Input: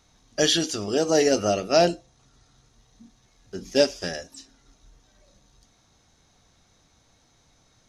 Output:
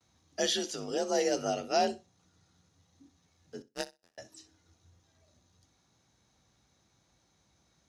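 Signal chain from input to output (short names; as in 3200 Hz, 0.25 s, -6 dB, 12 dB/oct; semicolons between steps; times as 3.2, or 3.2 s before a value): gate with hold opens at -53 dBFS; frequency shift +47 Hz; 3.62–4.18 power-law curve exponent 3; on a send: flutter echo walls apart 10.8 m, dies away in 0.21 s; on the sum: gain -9 dB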